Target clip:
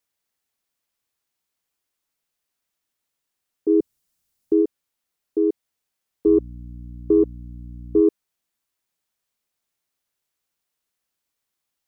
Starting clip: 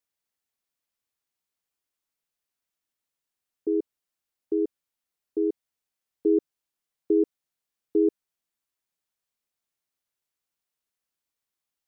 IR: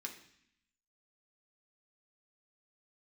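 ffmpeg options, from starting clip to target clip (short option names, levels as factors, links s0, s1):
-filter_complex "[0:a]asettb=1/sr,asplit=3[s0][s1][s2];[s0]atrim=end=6.264[s3];[s1]atrim=start=6.26:end=8.01,asetpts=PTS-STARTPTS,afade=t=in:d=0.004:c=qsin,afade=t=out:st=1.746:d=0.004:c=qsin,aeval=exprs='val(0)+0.00891*(sin(2*PI*60*n/s)+sin(2*PI*2*60*n/s)/2+sin(2*PI*3*60*n/s)/3+sin(2*PI*4*60*n/s)/4+sin(2*PI*5*60*n/s)/5)':c=same[s4];[s2]atrim=start=8.006[s5];[s3][s4]acrossfade=d=0.004:c1=hsin:c2=qsin[s6];[s6][s5]acrossfade=d=0.004:c1=qsin:c2=hsin,acontrast=42,asplit=3[s7][s8][s9];[s7]afade=t=out:st=3.68:d=0.02[s10];[s8]bass=f=250:g=11,treble=f=4000:g=7,afade=t=in:st=3.68:d=0.02,afade=t=out:st=4.61:d=0.02[s11];[s9]afade=t=in:st=4.61:d=0.02[s12];[s10][s11][s12]amix=inputs=3:normalize=0"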